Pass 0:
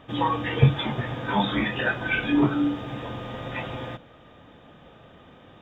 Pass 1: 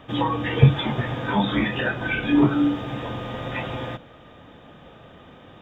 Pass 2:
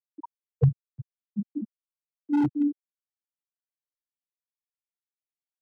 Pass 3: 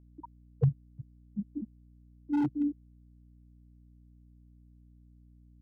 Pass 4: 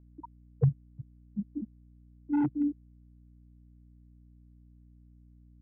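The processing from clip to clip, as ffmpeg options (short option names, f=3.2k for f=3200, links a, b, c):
-filter_complex "[0:a]acrossover=split=490[a][b];[b]acompressor=threshold=-30dB:ratio=2[c];[a][c]amix=inputs=2:normalize=0,volume=3.5dB"
-filter_complex "[0:a]afftfilt=real='re*gte(hypot(re,im),0.891)':imag='im*gte(hypot(re,im),0.891)':win_size=1024:overlap=0.75,lowshelf=f=240:g=-8,acrossover=split=150|610[a][b][c];[b]aeval=exprs='0.112*(abs(mod(val(0)/0.112+3,4)-2)-1)':c=same[d];[a][d][c]amix=inputs=3:normalize=0"
-af "aeval=exprs='val(0)+0.00282*(sin(2*PI*60*n/s)+sin(2*PI*2*60*n/s)/2+sin(2*PI*3*60*n/s)/3+sin(2*PI*4*60*n/s)/4+sin(2*PI*5*60*n/s)/5)':c=same,volume=-5dB"
-af "lowpass=f=2.3k:w=0.5412,lowpass=f=2.3k:w=1.3066,volume=1dB"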